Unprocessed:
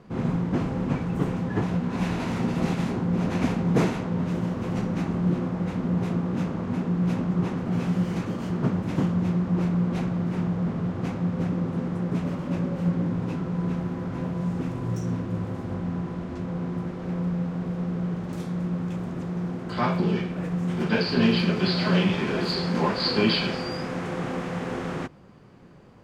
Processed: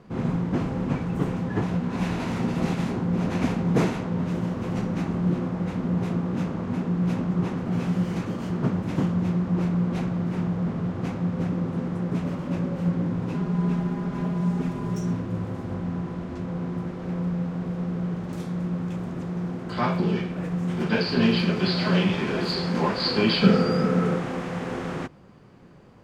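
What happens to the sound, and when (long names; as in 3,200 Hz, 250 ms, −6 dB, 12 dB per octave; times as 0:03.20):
0:13.34–0:15.13: comb filter 4.9 ms, depth 68%
0:23.42–0:24.17: hollow resonant body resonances 200/440/1,300 Hz, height 17 dB → 13 dB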